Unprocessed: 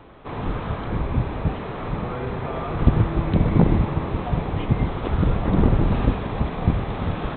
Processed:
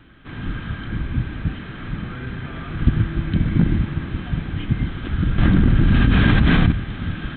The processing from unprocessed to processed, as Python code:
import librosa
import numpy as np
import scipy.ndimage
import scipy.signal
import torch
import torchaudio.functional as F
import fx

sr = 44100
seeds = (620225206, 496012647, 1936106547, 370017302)

y = fx.band_shelf(x, sr, hz=660.0, db=-13.5, octaves=1.7)
y = fx.small_body(y, sr, hz=(1600.0, 3100.0), ring_ms=35, db=10)
y = fx.env_flatten(y, sr, amount_pct=100, at=(5.38, 6.72))